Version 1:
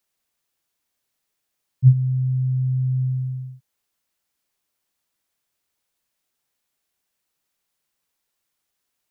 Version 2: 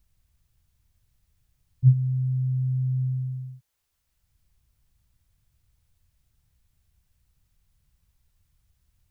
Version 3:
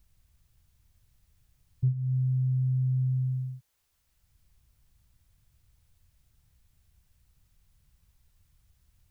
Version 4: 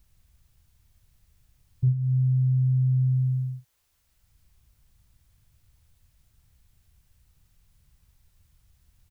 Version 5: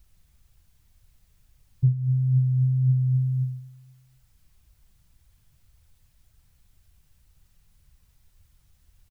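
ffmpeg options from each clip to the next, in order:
ffmpeg -i in.wav -filter_complex "[0:a]acrossover=split=100[link_01][link_02];[link_01]acompressor=mode=upward:threshold=-39dB:ratio=2.5[link_03];[link_02]lowshelf=frequency=210:gain=-7.5[link_04];[link_03][link_04]amix=inputs=2:normalize=0" out.wav
ffmpeg -i in.wav -af "acompressor=threshold=-27dB:ratio=6,volume=2.5dB" out.wav
ffmpeg -i in.wav -filter_complex "[0:a]asplit=2[link_01][link_02];[link_02]adelay=40,volume=-10.5dB[link_03];[link_01][link_03]amix=inputs=2:normalize=0,volume=3dB" out.wav
ffmpeg -i in.wav -af "flanger=delay=1.2:depth=6:regen=49:speed=1.9:shape=triangular,aecho=1:1:241|482|723:0.0668|0.0327|0.016,volume=5.5dB" out.wav

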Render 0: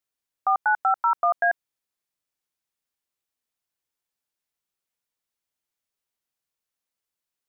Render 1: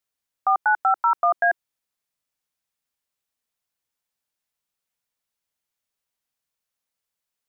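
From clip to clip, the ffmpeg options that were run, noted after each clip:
ffmpeg -i in.wav -af "equalizer=frequency=350:width=4.7:gain=-6.5,volume=2dB" out.wav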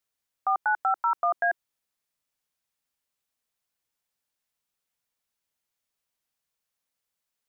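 ffmpeg -i in.wav -af "alimiter=limit=-17dB:level=0:latency=1:release=12" out.wav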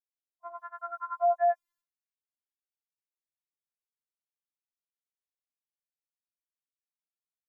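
ffmpeg -i in.wav -af "superequalizer=9b=3.16:10b=1.58:11b=1.58,agate=range=-33dB:threshold=-58dB:ratio=3:detection=peak,afftfilt=real='re*4*eq(mod(b,16),0)':imag='im*4*eq(mod(b,16),0)':win_size=2048:overlap=0.75,volume=-3.5dB" out.wav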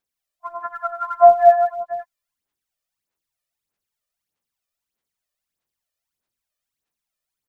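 ffmpeg -i in.wav -af "aecho=1:1:55|105|167|500:0.15|0.376|0.282|0.266,aphaser=in_gain=1:out_gain=1:delay=1.7:decay=0.62:speed=1.6:type=sinusoidal,volume=8dB" out.wav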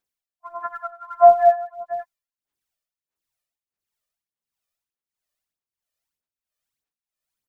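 ffmpeg -i in.wav -af "tremolo=f=1.5:d=0.8" out.wav

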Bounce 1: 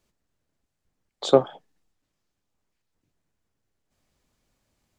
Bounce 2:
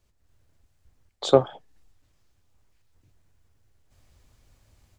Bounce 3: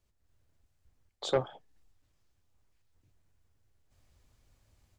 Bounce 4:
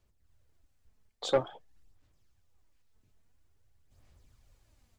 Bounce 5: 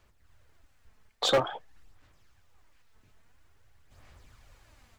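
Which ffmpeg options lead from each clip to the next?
ffmpeg -i in.wav -af "lowshelf=frequency=130:width_type=q:width=1.5:gain=8.5,dynaudnorm=framelen=150:gausssize=3:maxgain=9dB,volume=-1dB" out.wav
ffmpeg -i in.wav -af "asoftclip=type=tanh:threshold=-11.5dB,volume=-7dB" out.wav
ffmpeg -i in.wav -af "aphaser=in_gain=1:out_gain=1:delay=4.7:decay=0.41:speed=0.49:type=sinusoidal" out.wav
ffmpeg -i in.wav -filter_complex "[0:a]equalizer=frequency=1500:width=0.49:gain=9.5,asplit=2[link_01][link_02];[link_02]alimiter=limit=-20dB:level=0:latency=1:release=283,volume=0dB[link_03];[link_01][link_03]amix=inputs=2:normalize=0,asoftclip=type=hard:threshold=-18.5dB" out.wav

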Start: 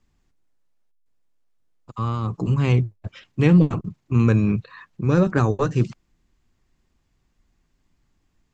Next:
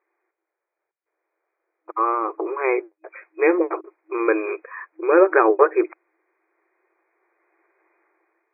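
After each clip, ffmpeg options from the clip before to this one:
ffmpeg -i in.wav -af "dynaudnorm=framelen=720:gausssize=3:maxgain=12.5dB,afftfilt=real='re*between(b*sr/4096,320,2500)':imag='im*between(b*sr/4096,320,2500)':win_size=4096:overlap=0.75,volume=3.5dB" out.wav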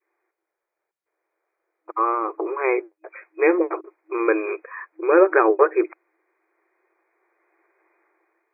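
ffmpeg -i in.wav -af "adynamicequalizer=threshold=0.0501:dfrequency=840:dqfactor=0.9:tfrequency=840:tqfactor=0.9:attack=5:release=100:ratio=0.375:range=1.5:mode=cutabove:tftype=bell" out.wav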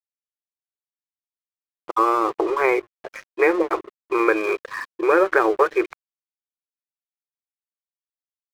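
ffmpeg -i in.wav -filter_complex "[0:a]acrossover=split=640|1500[link_01][link_02][link_03];[link_01]acompressor=threshold=-27dB:ratio=4[link_04];[link_02]acompressor=threshold=-29dB:ratio=4[link_05];[link_03]acompressor=threshold=-31dB:ratio=4[link_06];[link_04][link_05][link_06]amix=inputs=3:normalize=0,aeval=exprs='sgn(val(0))*max(abs(val(0))-0.00631,0)':channel_layout=same,volume=7.5dB" out.wav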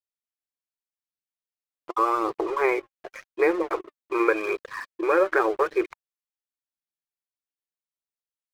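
ffmpeg -i in.wav -af "flanger=delay=0.2:depth=3.5:regen=61:speed=0.87:shape=sinusoidal" out.wav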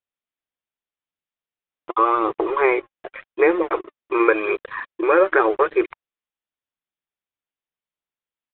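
ffmpeg -i in.wav -af "aresample=8000,aresample=44100,volume=5dB" out.wav

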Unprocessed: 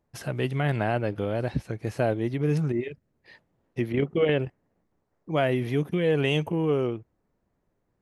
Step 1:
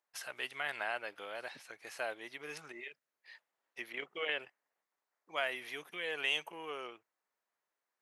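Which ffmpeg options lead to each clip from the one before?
ffmpeg -i in.wav -af "highpass=1200,volume=-2.5dB" out.wav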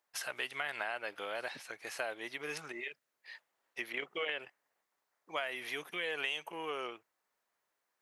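ffmpeg -i in.wav -af "acompressor=threshold=-38dB:ratio=6,volume=5dB" out.wav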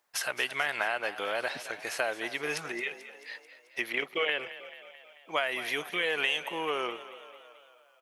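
ffmpeg -i in.wav -filter_complex "[0:a]asplit=7[link_01][link_02][link_03][link_04][link_05][link_06][link_07];[link_02]adelay=219,afreqshift=33,volume=-14.5dB[link_08];[link_03]adelay=438,afreqshift=66,volume=-18.8dB[link_09];[link_04]adelay=657,afreqshift=99,volume=-23.1dB[link_10];[link_05]adelay=876,afreqshift=132,volume=-27.4dB[link_11];[link_06]adelay=1095,afreqshift=165,volume=-31.7dB[link_12];[link_07]adelay=1314,afreqshift=198,volume=-36dB[link_13];[link_01][link_08][link_09][link_10][link_11][link_12][link_13]amix=inputs=7:normalize=0,volume=7.5dB" out.wav

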